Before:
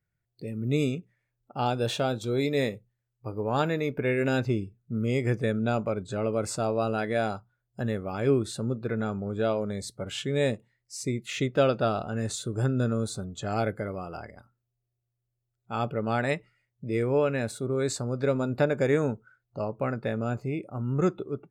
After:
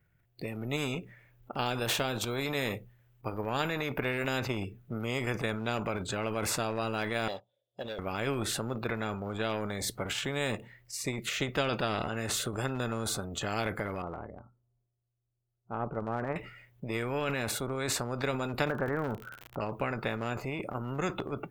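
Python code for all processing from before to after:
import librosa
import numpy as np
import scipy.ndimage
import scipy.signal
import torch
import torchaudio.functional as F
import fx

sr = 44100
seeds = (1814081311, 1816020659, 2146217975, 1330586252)

y = fx.chain(x, sr, fx.double_bandpass(hz=1400.0, octaves=2.7),
    fx.leveller(passes=1), at=(7.28, 7.99))
y = fx.chain(y, sr, fx.lowpass(hz=1100.0, slope=24),
    fx.upward_expand(threshold_db=-48.0, expansion=1.5), at=(14.02, 16.36))
y = fx.steep_lowpass(y, sr, hz=1700.0, slope=72, at=(18.68, 19.6), fade=0.02)
y = fx.dmg_crackle(y, sr, seeds[0], per_s=68.0, level_db=-46.0, at=(18.68, 19.6), fade=0.02)
y = fx.band_shelf(y, sr, hz=6600.0, db=-9.5, octaves=1.7)
y = fx.transient(y, sr, attack_db=5, sustain_db=9)
y = fx.spectral_comp(y, sr, ratio=2.0)
y = F.gain(torch.from_numpy(y), -7.5).numpy()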